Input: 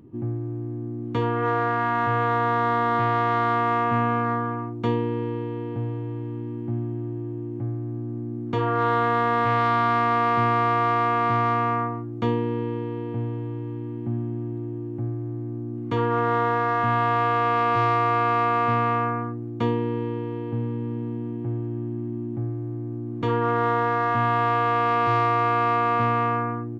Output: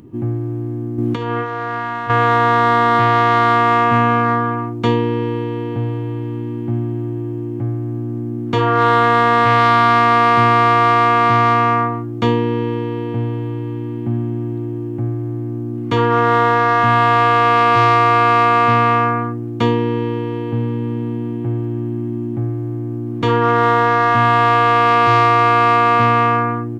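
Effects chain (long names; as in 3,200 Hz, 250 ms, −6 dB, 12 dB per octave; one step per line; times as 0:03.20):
high-shelf EQ 2,300 Hz +8.5 dB
0:00.98–0:02.10: compressor whose output falls as the input rises −27 dBFS, ratio −0.5
level +7.5 dB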